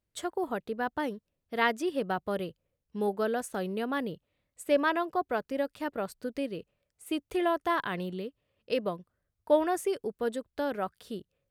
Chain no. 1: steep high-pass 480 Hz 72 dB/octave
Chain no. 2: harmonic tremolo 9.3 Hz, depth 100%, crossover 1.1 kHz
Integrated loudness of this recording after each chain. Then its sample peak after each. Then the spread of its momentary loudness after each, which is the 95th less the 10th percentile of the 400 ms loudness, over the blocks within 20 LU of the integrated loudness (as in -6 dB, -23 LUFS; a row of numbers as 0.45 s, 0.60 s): -33.5 LUFS, -37.0 LUFS; -13.5 dBFS, -16.5 dBFS; 17 LU, 14 LU